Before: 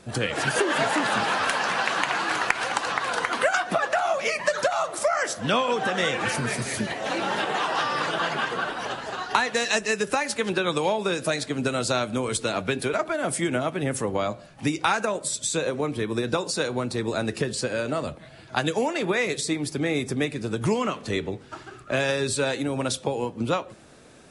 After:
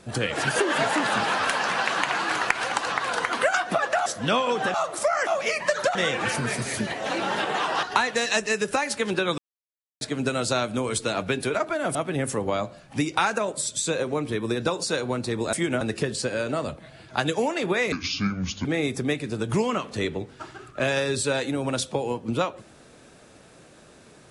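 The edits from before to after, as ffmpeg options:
ffmpeg -i in.wav -filter_complex "[0:a]asplit=13[link_01][link_02][link_03][link_04][link_05][link_06][link_07][link_08][link_09][link_10][link_11][link_12][link_13];[link_01]atrim=end=4.062[link_14];[link_02]atrim=start=5.268:end=5.952[link_15];[link_03]atrim=start=4.738:end=5.272[link_16];[link_04]atrim=start=4.058:end=4.742[link_17];[link_05]atrim=start=5.948:end=7.832[link_18];[link_06]atrim=start=9.218:end=10.77,asetpts=PTS-STARTPTS,afade=type=out:start_time=1.548:duration=0.004:curve=hsin[link_19];[link_07]atrim=start=10.77:end=11.4,asetpts=PTS-STARTPTS,volume=0[link_20];[link_08]atrim=start=11.4:end=13.342,asetpts=PTS-STARTPTS,afade=type=in:duration=0.004:curve=hsin[link_21];[link_09]atrim=start=13.618:end=17.202[link_22];[link_10]atrim=start=13.338:end=13.622[link_23];[link_11]atrim=start=17.198:end=19.314[link_24];[link_12]atrim=start=19.31:end=19.77,asetpts=PTS-STARTPTS,asetrate=27783,aresample=44100[link_25];[link_13]atrim=start=19.766[link_26];[link_14][link_15]acrossfade=duration=0.004:curve1=hsin:curve2=hsin[link_27];[link_27][link_16]acrossfade=duration=0.004:curve1=hsin:curve2=hsin[link_28];[link_28][link_17]acrossfade=duration=0.004:curve1=hsin:curve2=hsin[link_29];[link_29][link_18]acrossfade=duration=0.004:curve1=hsin:curve2=hsin[link_30];[link_19][link_20][link_21]concat=n=3:v=0:a=1[link_31];[link_30][link_31]acrossfade=duration=0.004:curve1=hsin:curve2=hsin[link_32];[link_32][link_22]acrossfade=duration=0.004:curve1=hsin:curve2=hsin[link_33];[link_33][link_23]acrossfade=duration=0.004:curve1=hsin:curve2=hsin[link_34];[link_34][link_24]acrossfade=duration=0.004:curve1=hsin:curve2=hsin[link_35];[link_35][link_25]acrossfade=duration=0.004:curve1=hsin:curve2=hsin[link_36];[link_36][link_26]acrossfade=duration=0.004:curve1=hsin:curve2=hsin" out.wav

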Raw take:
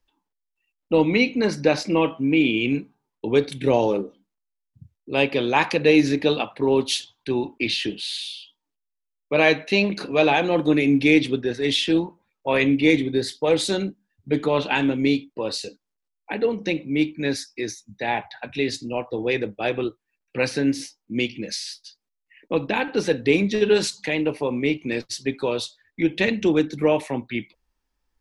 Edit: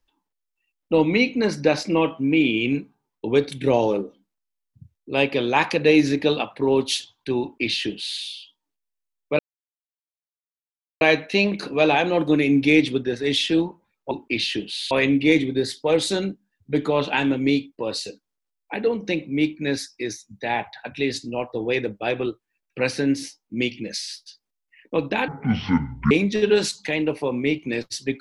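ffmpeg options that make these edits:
ffmpeg -i in.wav -filter_complex "[0:a]asplit=6[link_01][link_02][link_03][link_04][link_05][link_06];[link_01]atrim=end=9.39,asetpts=PTS-STARTPTS,afade=type=out:start_time=9.386:duration=0.004:curve=hsin,apad=pad_dur=1.62[link_07];[link_02]atrim=start=9.39:end=12.492,asetpts=PTS-STARTPTS,afade=type=in:duration=0.004:curve=hsin[link_08];[link_03]atrim=start=7.408:end=8.212[link_09];[link_04]atrim=start=12.488:end=22.864[link_10];[link_05]atrim=start=22.86:end=23.3,asetpts=PTS-STARTPTS,asetrate=23373,aresample=44100,atrim=end_sample=36611,asetpts=PTS-STARTPTS[link_11];[link_06]atrim=start=23.296[link_12];[link_07][link_08]concat=n=2:v=0:a=1[link_13];[link_13][link_09]acrossfade=duration=0.004:curve1=hsin:curve2=hsin[link_14];[link_14][link_10]acrossfade=duration=0.004:curve1=hsin:curve2=hsin[link_15];[link_15][link_11]acrossfade=duration=0.004:curve1=hsin:curve2=hsin[link_16];[link_16][link_12]acrossfade=duration=0.004:curve1=hsin:curve2=hsin" out.wav

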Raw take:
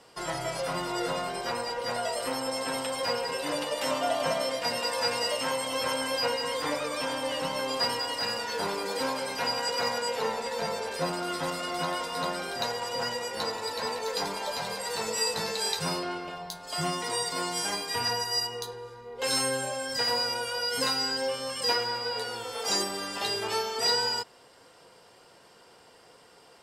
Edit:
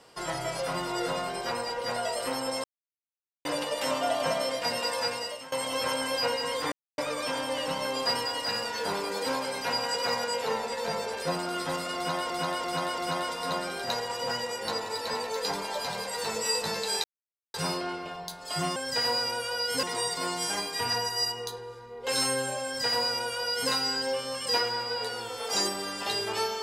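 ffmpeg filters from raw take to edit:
ffmpeg -i in.wav -filter_complex "[0:a]asplit=11[link_01][link_02][link_03][link_04][link_05][link_06][link_07][link_08][link_09][link_10][link_11];[link_01]atrim=end=2.64,asetpts=PTS-STARTPTS,afade=type=out:start_time=2.636:duration=0.004:curve=hsin[link_12];[link_02]atrim=start=2.64:end=3.45,asetpts=PTS-STARTPTS,volume=0[link_13];[link_03]atrim=start=3.45:end=5.52,asetpts=PTS-STARTPTS,afade=type=in:duration=0.004:curve=hsin,afade=type=out:start_time=1.47:duration=0.6:silence=0.112202[link_14];[link_04]atrim=start=5.52:end=6.72,asetpts=PTS-STARTPTS,afade=type=in:duration=0.004:curve=hsin:silence=0.112202,afade=type=out:start_time=1.196:duration=0.004:curve=hsin,apad=pad_dur=0.26[link_15];[link_05]atrim=start=6.72:end=12.042,asetpts=PTS-STARTPTS,afade=type=in:duration=0.004:curve=hsin[link_16];[link_06]atrim=start=11.698:end=12.042[link_17];[link_07]atrim=start=11.698:end=12.042[link_18];[link_08]atrim=start=11.698:end=15.76,asetpts=PTS-STARTPTS,afade=type=out:start_time=4.058:duration=0.004:curve=hsin,apad=pad_dur=0.5[link_19];[link_09]atrim=start=15.76:end=16.982,asetpts=PTS-STARTPTS,afade=type=in:duration=0.004:curve=hsin[link_20];[link_10]atrim=start=19.788:end=20.862[link_21];[link_11]atrim=start=16.978[link_22];[link_12][link_13][link_14][link_15][link_16]concat=n=5:v=0:a=1[link_23];[link_23][link_17]acrossfade=duration=0.004:curve1=hsin:curve2=hsin[link_24];[link_24][link_18]acrossfade=duration=0.004:curve1=hsin:curve2=hsin[link_25];[link_19][link_20]concat=n=2:v=0:a=1[link_26];[link_25][link_26]acrossfade=duration=0.004:curve1=hsin:curve2=hsin[link_27];[link_27][link_21]acrossfade=duration=0.004:curve1=hsin:curve2=hsin[link_28];[link_28][link_22]acrossfade=duration=0.004:curve1=hsin:curve2=hsin" out.wav

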